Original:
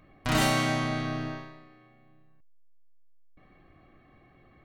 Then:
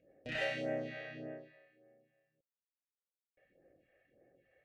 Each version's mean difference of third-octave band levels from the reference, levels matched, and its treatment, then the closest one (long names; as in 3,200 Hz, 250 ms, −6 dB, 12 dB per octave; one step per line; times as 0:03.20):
7.0 dB: formant filter e
spectral tilt −1.5 dB per octave
all-pass phaser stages 2, 1.7 Hz, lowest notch 220–4,000 Hz
level +4.5 dB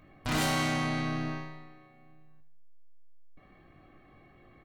2.5 dB: soft clipping −25 dBFS, distortion −10 dB
double-tracking delay 20 ms −8 dB
on a send: repeating echo 78 ms, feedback 47%, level −12.5 dB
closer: second